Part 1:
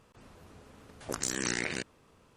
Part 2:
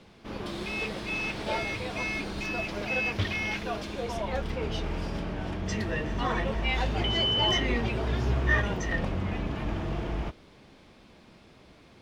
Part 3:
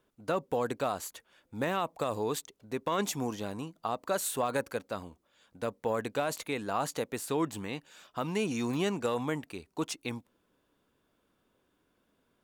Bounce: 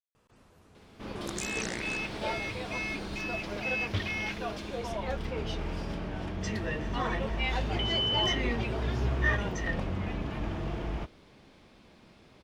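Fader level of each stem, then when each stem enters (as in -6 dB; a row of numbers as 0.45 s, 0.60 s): -5.5 dB, -2.5 dB, mute; 0.15 s, 0.75 s, mute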